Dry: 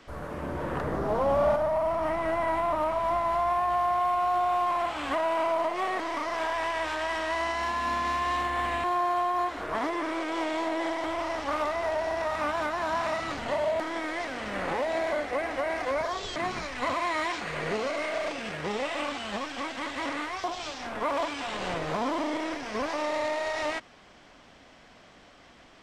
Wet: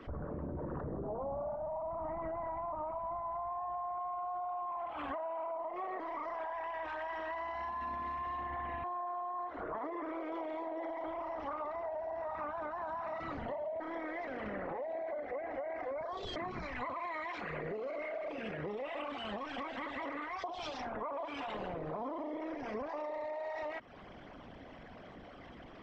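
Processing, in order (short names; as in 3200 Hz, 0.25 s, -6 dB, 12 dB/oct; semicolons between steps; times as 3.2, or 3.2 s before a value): formant sharpening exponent 2; bell 130 Hz +3.5 dB 3 oct; compressor, threshold -39 dBFS, peak gain reduction 18 dB; gain +1 dB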